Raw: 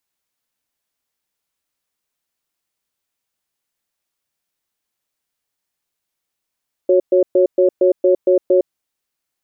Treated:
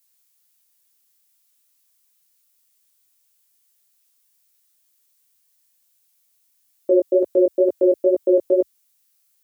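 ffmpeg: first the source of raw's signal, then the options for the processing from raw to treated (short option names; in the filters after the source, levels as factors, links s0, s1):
-f lavfi -i "aevalsrc='0.251*(sin(2*PI*367*t)+sin(2*PI*552*t))*clip(min(mod(t,0.23),0.11-mod(t,0.23))/0.005,0,1)':d=1.73:s=44100"
-af "crystalizer=i=5.5:c=0,flanger=delay=16.5:depth=3.9:speed=2.2,highpass=f=68:w=0.5412,highpass=f=68:w=1.3066"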